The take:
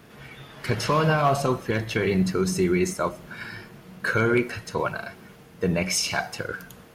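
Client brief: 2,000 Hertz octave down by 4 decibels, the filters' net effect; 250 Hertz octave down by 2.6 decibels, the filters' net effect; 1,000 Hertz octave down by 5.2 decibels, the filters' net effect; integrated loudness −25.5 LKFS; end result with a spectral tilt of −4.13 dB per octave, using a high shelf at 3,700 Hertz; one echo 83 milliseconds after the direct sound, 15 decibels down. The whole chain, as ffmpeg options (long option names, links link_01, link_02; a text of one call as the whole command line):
ffmpeg -i in.wav -af "equalizer=frequency=250:width_type=o:gain=-4,equalizer=frequency=1000:width_type=o:gain=-6,equalizer=frequency=2000:width_type=o:gain=-4,highshelf=frequency=3700:gain=4,aecho=1:1:83:0.178,volume=1dB" out.wav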